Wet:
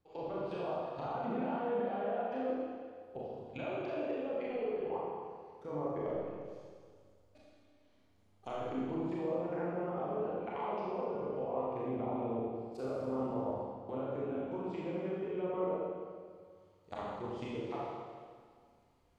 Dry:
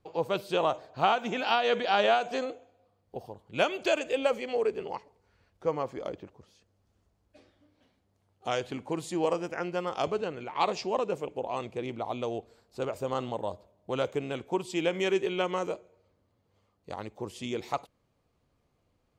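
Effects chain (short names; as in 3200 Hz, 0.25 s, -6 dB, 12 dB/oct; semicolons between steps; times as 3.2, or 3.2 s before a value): 6.08–8.51 half-wave gain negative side -3 dB; level quantiser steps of 19 dB; treble ducked by the level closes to 910 Hz, closed at -35.5 dBFS; Schroeder reverb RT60 1.9 s, combs from 27 ms, DRR -7 dB; gain -3.5 dB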